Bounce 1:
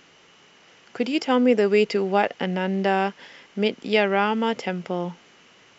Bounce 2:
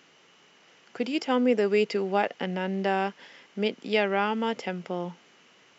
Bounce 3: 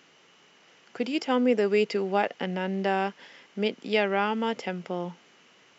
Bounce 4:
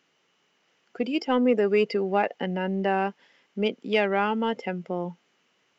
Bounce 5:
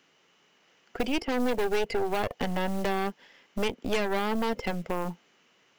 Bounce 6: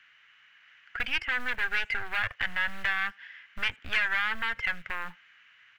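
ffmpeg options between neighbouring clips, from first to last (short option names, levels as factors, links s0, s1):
-af "highpass=130,volume=0.596"
-af anull
-filter_complex "[0:a]afftdn=nr=13:nf=-35,asplit=2[s0][s1];[s1]asoftclip=type=tanh:threshold=0.075,volume=0.316[s2];[s0][s2]amix=inputs=2:normalize=0"
-filter_complex "[0:a]acrusher=bits=7:mode=log:mix=0:aa=0.000001,acrossover=split=680|3200[s0][s1][s2];[s0]acompressor=threshold=0.0316:ratio=4[s3];[s1]acompressor=threshold=0.0141:ratio=4[s4];[s2]acompressor=threshold=0.00355:ratio=4[s5];[s3][s4][s5]amix=inputs=3:normalize=0,aeval=exprs='0.112*(cos(1*acos(clip(val(0)/0.112,-1,1)))-cos(1*PI/2))+0.0141*(cos(5*acos(clip(val(0)/0.112,-1,1)))-cos(5*PI/2))+0.0282*(cos(6*acos(clip(val(0)/0.112,-1,1)))-cos(6*PI/2))':c=same"
-filter_complex "[0:a]firequalizer=gain_entry='entry(110,0);entry(170,-15);entry(410,-20);entry(1600,14);entry(5200,-8);entry(8800,-10)':delay=0.05:min_phase=1,asplit=2[s0][s1];[s1]aeval=exprs='clip(val(0),-1,0.0282)':c=same,volume=0.251[s2];[s0][s2]amix=inputs=2:normalize=0,asplit=2[s3][s4];[s4]adelay=80,highpass=300,lowpass=3400,asoftclip=type=hard:threshold=0.1,volume=0.0447[s5];[s3][s5]amix=inputs=2:normalize=0,volume=0.708"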